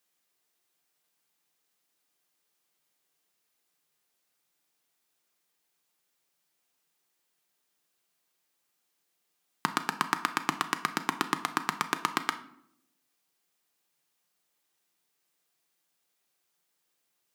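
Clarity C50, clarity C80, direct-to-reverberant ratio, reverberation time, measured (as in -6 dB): 13.5 dB, 17.0 dB, 7.5 dB, 0.75 s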